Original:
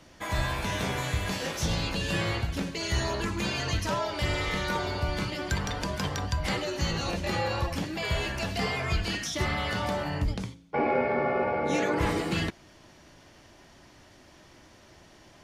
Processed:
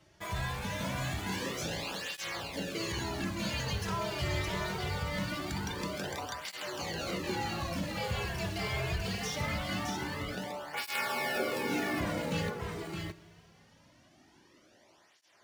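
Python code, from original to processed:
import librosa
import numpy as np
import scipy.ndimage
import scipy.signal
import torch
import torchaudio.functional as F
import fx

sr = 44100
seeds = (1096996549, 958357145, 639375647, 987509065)

p1 = fx.envelope_flatten(x, sr, power=0.3, at=(10.76, 11.38), fade=0.02)
p2 = fx.quant_companded(p1, sr, bits=2)
p3 = p1 + F.gain(torch.from_numpy(p2), -10.0).numpy()
p4 = p3 + 10.0 ** (-4.5 / 20.0) * np.pad(p3, (int(617 * sr / 1000.0), 0))[:len(p3)]
p5 = fx.rev_schroeder(p4, sr, rt60_s=2.8, comb_ms=30, drr_db=17.0)
p6 = fx.flanger_cancel(p5, sr, hz=0.23, depth_ms=4.2)
y = F.gain(torch.from_numpy(p6), -6.5).numpy()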